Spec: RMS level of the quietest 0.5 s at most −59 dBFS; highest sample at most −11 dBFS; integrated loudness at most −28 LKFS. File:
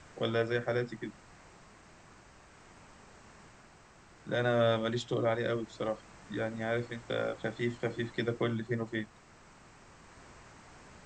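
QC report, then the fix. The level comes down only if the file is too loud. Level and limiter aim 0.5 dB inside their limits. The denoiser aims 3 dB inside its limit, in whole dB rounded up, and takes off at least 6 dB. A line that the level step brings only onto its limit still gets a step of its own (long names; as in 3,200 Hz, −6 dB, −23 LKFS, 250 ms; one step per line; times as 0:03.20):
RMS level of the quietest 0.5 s −58 dBFS: out of spec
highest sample −15.5 dBFS: in spec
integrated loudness −33.5 LKFS: in spec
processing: broadband denoise 6 dB, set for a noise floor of −58 dBFS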